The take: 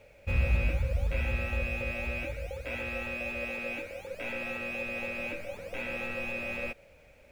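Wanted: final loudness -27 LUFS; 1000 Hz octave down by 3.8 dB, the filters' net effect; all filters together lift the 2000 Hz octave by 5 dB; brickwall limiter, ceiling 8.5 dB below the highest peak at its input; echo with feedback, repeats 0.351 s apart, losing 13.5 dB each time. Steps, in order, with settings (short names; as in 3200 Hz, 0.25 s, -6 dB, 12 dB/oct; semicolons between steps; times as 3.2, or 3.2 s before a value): bell 1000 Hz -8.5 dB; bell 2000 Hz +8.5 dB; limiter -24.5 dBFS; feedback echo 0.351 s, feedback 21%, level -13.5 dB; gain +5 dB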